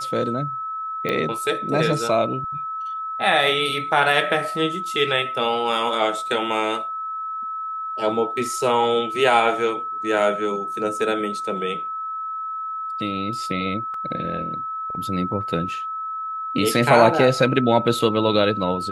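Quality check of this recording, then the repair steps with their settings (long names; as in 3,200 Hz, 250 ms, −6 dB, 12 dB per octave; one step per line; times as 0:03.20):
whistle 1,300 Hz −26 dBFS
0:01.09: click −12 dBFS
0:13.94: drop-out 3 ms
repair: click removal
notch filter 1,300 Hz, Q 30
repair the gap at 0:13.94, 3 ms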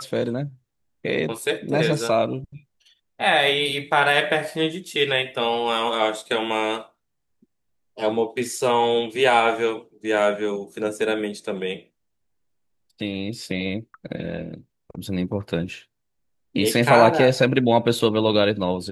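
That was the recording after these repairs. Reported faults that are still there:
none of them is left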